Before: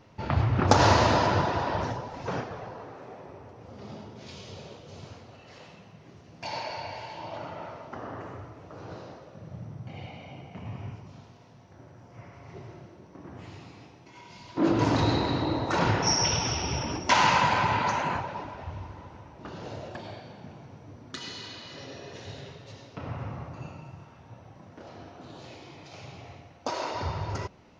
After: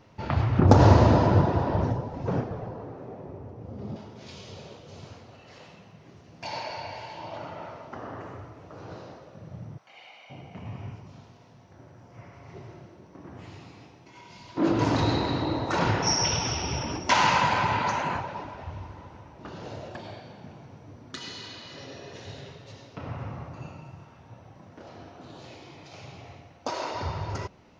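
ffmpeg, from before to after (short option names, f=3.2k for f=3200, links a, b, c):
-filter_complex "[0:a]asettb=1/sr,asplit=3[a][b][c];[a]atrim=end=0.594[d];[b]atrim=start=0.59:end=3.96,asetpts=PTS-STARTPTS,afade=t=in:d=0.004:c=qsin,afade=t=out:st=3.366:d=0.004:c=qsin,tiltshelf=f=760:g=8.5[e];[c]atrim=start=3.956[f];[d][e]acrossfade=d=0.004:c1=hsin:c2=qsin[g];[g][f]acrossfade=d=0.004:c1=qsin:c2=hsin,asettb=1/sr,asplit=3[h][i][j];[h]atrim=end=9.784[k];[i]atrim=start=9.78:end=10.3,asetpts=PTS-STARTPTS,afade=t=in:d=0.004:c=qsin,afade=t=out:st=0.516:d=0.004:c=qsin,highpass=1k[l];[j]atrim=start=10.296[m];[k][l]acrossfade=d=0.004:c1=hsin:c2=qsin[n];[n][m]acrossfade=d=0.004:c1=qsin:c2=hsin"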